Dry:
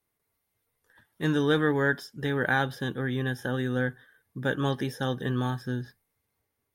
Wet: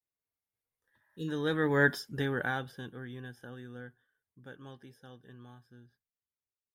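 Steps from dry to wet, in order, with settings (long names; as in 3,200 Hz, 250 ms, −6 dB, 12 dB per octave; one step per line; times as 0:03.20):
source passing by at 0:01.96, 9 m/s, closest 1.5 metres
healed spectral selection 0:01.03–0:01.26, 550–2,500 Hz before
level +2.5 dB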